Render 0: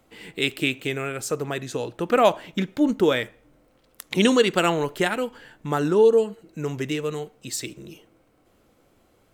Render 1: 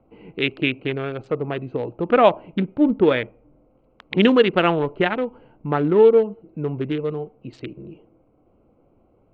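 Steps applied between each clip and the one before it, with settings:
adaptive Wiener filter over 25 samples
low-pass filter 3,200 Hz 24 dB per octave
level +3.5 dB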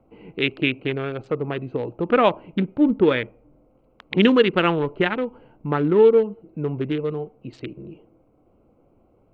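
dynamic equaliser 680 Hz, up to −6 dB, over −32 dBFS, Q 2.6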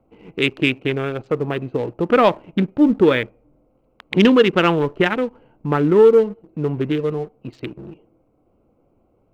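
leveller curve on the samples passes 1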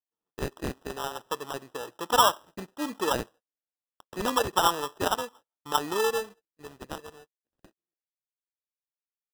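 band-pass filter sweep 1,200 Hz → 4,600 Hz, 0:05.96–0:07.38
noise gate −50 dBFS, range −34 dB
decimation without filtering 20×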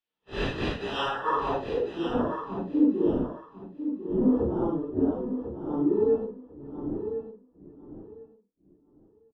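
random phases in long frames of 200 ms
low-pass filter sweep 3,200 Hz → 300 Hz, 0:00.96–0:01.99
repeating echo 1,048 ms, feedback 18%, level −9.5 dB
level +4.5 dB

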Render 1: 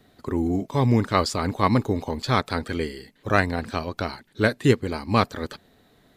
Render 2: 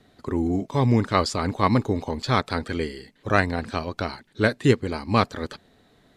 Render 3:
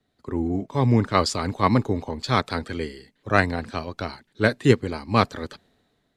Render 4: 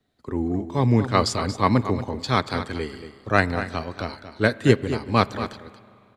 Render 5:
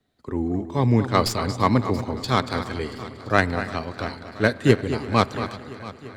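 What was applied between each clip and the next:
low-pass filter 9,800 Hz 12 dB per octave
multiband upward and downward expander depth 40%
on a send: single-tap delay 231 ms −11.5 dB; on the sum: spring reverb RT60 2.7 s, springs 34/40/45 ms, chirp 50 ms, DRR 19 dB
stylus tracing distortion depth 0.034 ms; echo machine with several playback heads 340 ms, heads first and second, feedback 63%, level −20.5 dB

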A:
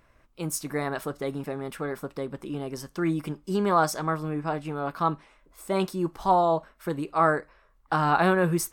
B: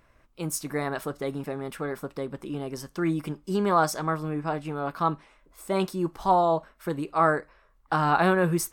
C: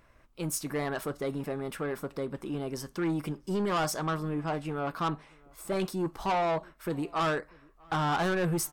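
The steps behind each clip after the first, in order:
no processing that can be heard
soft clipping −24.5 dBFS, distortion −8 dB; slap from a distant wall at 110 metres, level −27 dB

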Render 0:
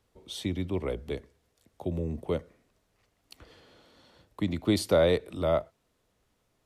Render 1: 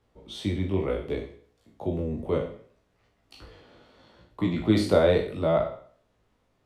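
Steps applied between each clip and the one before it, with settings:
peak hold with a decay on every bin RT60 0.53 s
low-pass filter 2,500 Hz 6 dB per octave
chorus effect 0.68 Hz, delay 16.5 ms, depth 4.3 ms
level +5.5 dB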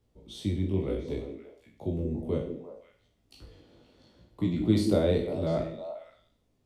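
parametric band 1,300 Hz −12 dB 2.6 octaves
echo through a band-pass that steps 174 ms, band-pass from 290 Hz, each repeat 1.4 octaves, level −4 dB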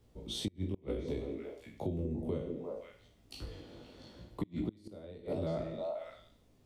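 gate with flip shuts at −17 dBFS, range −30 dB
downward compressor 4 to 1, threshold −41 dBFS, peak gain reduction 15 dB
level +6 dB

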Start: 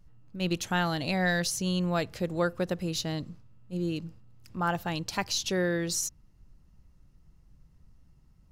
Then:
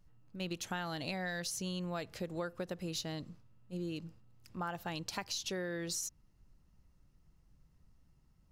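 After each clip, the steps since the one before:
low-shelf EQ 240 Hz −4.5 dB
downward compressor, threshold −31 dBFS, peak gain reduction 8 dB
level −4 dB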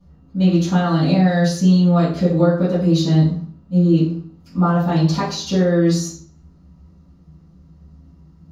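convolution reverb RT60 0.50 s, pre-delay 3 ms, DRR −18.5 dB
level −5 dB

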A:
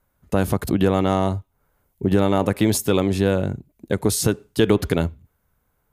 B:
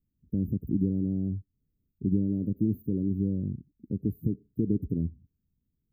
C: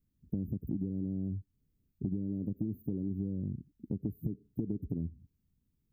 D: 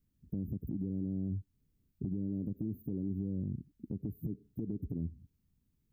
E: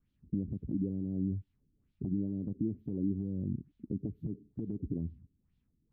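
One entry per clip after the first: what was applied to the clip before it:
inverse Chebyshev band-stop filter 880–9,500 Hz, stop band 60 dB; low-shelf EQ 140 Hz −8.5 dB; level −2 dB
downward compressor, threshold −33 dBFS, peak gain reduction 12.5 dB; level +1.5 dB
brickwall limiter −29 dBFS, peak gain reduction 7 dB; level +1 dB
auto-filter low-pass sine 2.2 Hz 270–3,600 Hz

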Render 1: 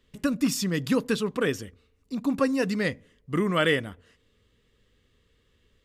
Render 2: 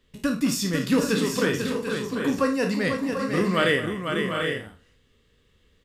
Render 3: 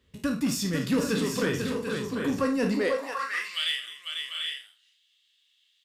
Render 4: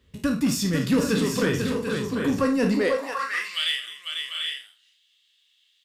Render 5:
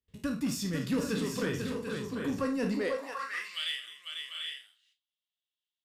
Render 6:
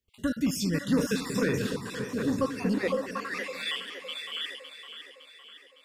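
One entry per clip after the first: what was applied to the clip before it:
peak hold with a decay on every bin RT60 0.31 s; on a send: multi-tap delay 54/217/496/741/784/821 ms −11.5/−17/−6.5/−8.5/−8/−14 dB
high-pass filter sweep 69 Hz → 3,300 Hz, 0:02.29–0:03.57; in parallel at −3 dB: soft clipping −22.5 dBFS, distortion −10 dB; on the sum: level −7 dB
low-shelf EQ 150 Hz +4.5 dB; level +3 dB
noise gate with hold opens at −51 dBFS; level −9 dB
time-frequency cells dropped at random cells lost 38%; echo with a time of its own for lows and highs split 380 Hz, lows 228 ms, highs 559 ms, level −10 dB; level +5 dB

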